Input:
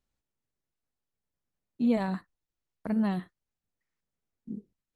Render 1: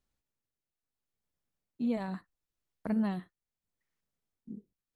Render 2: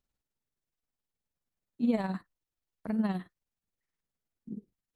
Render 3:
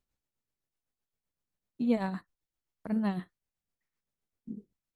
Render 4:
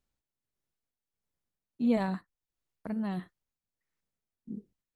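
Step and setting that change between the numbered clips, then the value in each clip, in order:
tremolo, rate: 0.75 Hz, 19 Hz, 7.8 Hz, 1.5 Hz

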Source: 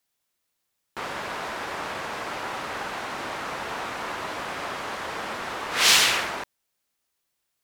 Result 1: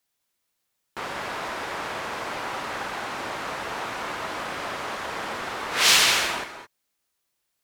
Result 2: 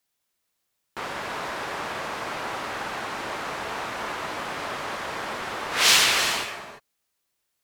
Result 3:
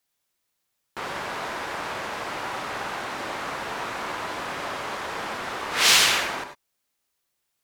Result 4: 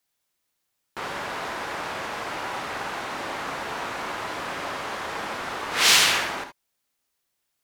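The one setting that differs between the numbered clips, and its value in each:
gated-style reverb, gate: 240 ms, 370 ms, 120 ms, 90 ms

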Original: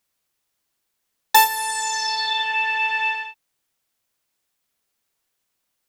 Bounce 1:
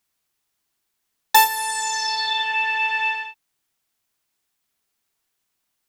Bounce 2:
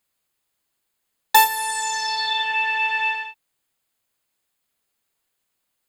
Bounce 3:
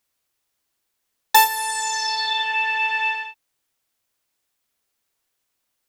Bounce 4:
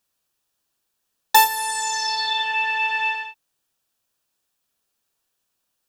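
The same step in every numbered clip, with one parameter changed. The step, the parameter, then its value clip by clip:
band-stop, frequency: 530 Hz, 5.7 kHz, 180 Hz, 2.1 kHz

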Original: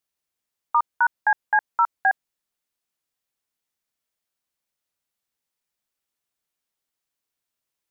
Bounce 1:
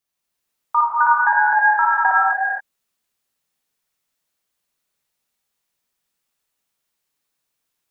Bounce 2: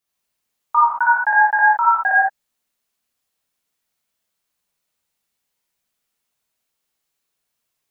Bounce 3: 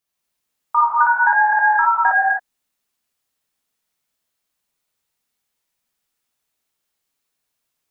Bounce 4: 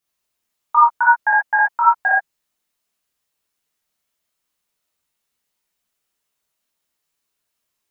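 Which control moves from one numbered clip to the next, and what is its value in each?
gated-style reverb, gate: 500 ms, 190 ms, 290 ms, 100 ms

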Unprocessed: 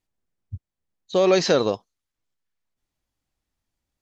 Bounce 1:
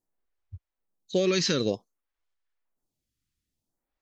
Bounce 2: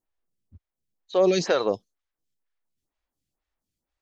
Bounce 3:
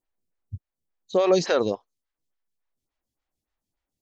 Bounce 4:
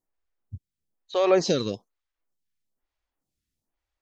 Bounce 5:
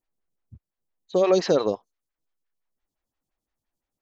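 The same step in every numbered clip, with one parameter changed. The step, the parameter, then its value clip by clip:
lamp-driven phase shifter, rate: 0.54 Hz, 2.1 Hz, 3.5 Hz, 1.1 Hz, 5.8 Hz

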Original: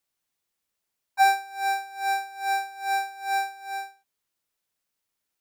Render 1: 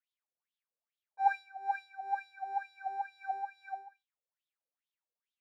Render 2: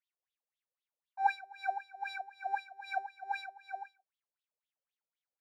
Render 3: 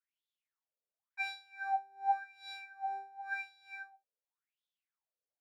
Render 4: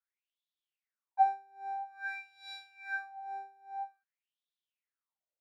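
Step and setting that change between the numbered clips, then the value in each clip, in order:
wah-wah, rate: 2.3 Hz, 3.9 Hz, 0.91 Hz, 0.5 Hz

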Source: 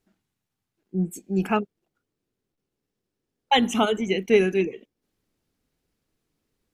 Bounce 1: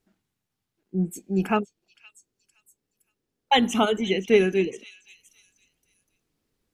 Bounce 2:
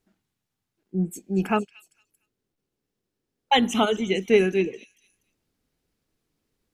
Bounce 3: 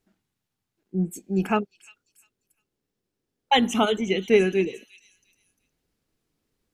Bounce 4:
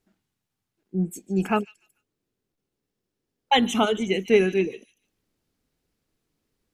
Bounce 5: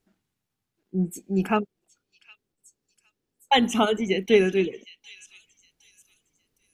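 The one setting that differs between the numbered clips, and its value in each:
repeats whose band climbs or falls, time: 517 ms, 229 ms, 350 ms, 147 ms, 762 ms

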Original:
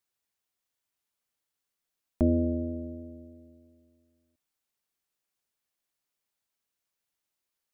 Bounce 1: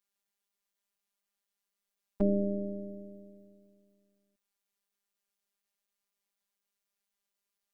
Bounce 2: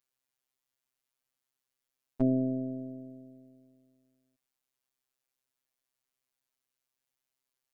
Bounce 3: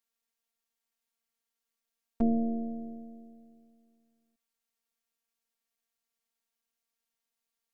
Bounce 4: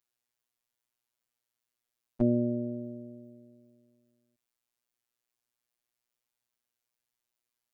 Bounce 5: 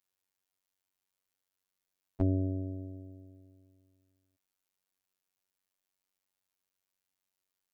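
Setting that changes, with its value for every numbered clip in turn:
robot voice, frequency: 200 Hz, 130 Hz, 230 Hz, 120 Hz, 94 Hz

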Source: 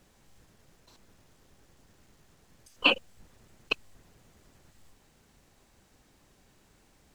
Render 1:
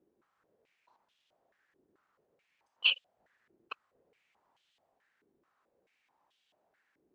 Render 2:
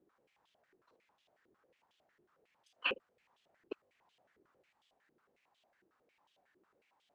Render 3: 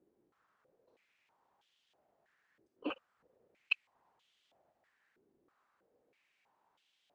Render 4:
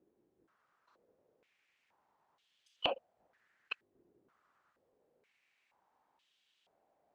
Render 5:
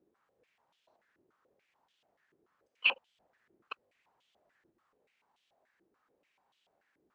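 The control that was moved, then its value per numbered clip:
step-sequenced band-pass, rate: 4.6 Hz, 11 Hz, 3.1 Hz, 2.1 Hz, 6.9 Hz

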